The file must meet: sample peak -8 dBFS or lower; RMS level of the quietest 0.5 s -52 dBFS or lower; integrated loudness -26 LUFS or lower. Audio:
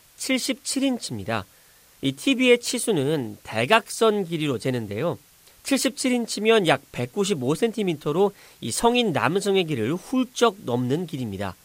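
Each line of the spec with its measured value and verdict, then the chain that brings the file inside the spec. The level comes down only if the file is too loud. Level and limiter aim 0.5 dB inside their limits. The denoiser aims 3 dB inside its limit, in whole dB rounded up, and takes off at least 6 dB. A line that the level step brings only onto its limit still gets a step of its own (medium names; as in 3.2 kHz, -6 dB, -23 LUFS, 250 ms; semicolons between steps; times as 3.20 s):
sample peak -4.0 dBFS: fail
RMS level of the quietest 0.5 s -54 dBFS: pass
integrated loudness -23.5 LUFS: fail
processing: trim -3 dB; peak limiter -8.5 dBFS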